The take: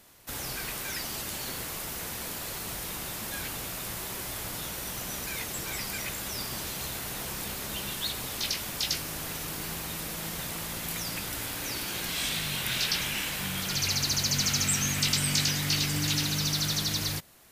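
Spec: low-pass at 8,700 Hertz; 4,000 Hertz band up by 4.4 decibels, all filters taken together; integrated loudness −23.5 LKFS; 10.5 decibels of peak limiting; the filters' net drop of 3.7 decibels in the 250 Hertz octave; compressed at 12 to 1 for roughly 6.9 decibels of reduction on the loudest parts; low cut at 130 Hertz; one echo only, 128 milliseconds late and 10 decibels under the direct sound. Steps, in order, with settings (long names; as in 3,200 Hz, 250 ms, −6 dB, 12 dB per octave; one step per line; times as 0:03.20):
high-pass filter 130 Hz
low-pass filter 8,700 Hz
parametric band 250 Hz −4.5 dB
parametric band 4,000 Hz +5.5 dB
downward compressor 12 to 1, threshold −27 dBFS
brickwall limiter −26.5 dBFS
single-tap delay 128 ms −10 dB
level +10.5 dB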